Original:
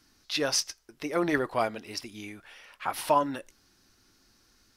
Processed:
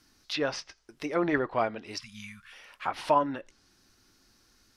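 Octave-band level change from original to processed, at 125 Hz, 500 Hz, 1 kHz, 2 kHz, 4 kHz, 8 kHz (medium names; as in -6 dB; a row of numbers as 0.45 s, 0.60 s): 0.0 dB, 0.0 dB, 0.0 dB, -1.0 dB, -5.5 dB, -12.5 dB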